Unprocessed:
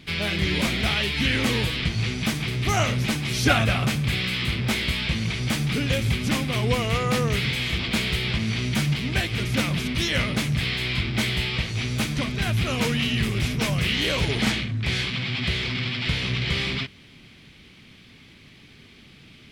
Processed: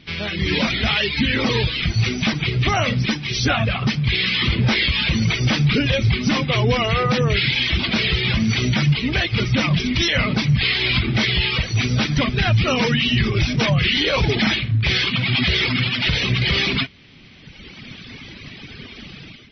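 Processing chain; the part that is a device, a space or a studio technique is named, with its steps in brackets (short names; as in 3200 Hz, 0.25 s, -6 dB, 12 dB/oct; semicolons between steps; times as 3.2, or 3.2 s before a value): reverb removal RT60 1.8 s; 0.79–1.38 dynamic EQ 230 Hz, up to +7 dB, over -44 dBFS, Q 5.4; low-bitrate web radio (AGC gain up to 16 dB; limiter -9 dBFS, peak gain reduction 8 dB; MP3 24 kbps 24000 Hz)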